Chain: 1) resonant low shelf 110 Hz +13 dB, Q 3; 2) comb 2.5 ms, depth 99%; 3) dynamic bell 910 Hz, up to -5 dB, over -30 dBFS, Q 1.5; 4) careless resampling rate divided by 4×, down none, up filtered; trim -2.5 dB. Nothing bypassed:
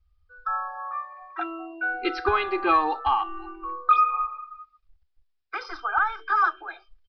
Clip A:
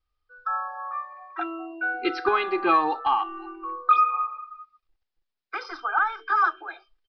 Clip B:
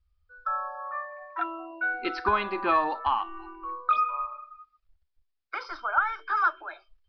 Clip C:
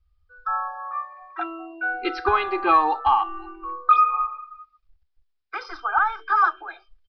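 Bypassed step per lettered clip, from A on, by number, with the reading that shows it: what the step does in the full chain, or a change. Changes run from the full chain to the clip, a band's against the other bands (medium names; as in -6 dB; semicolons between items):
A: 1, 250 Hz band +1.5 dB; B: 2, loudness change -3.5 LU; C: 3, 1 kHz band +2.5 dB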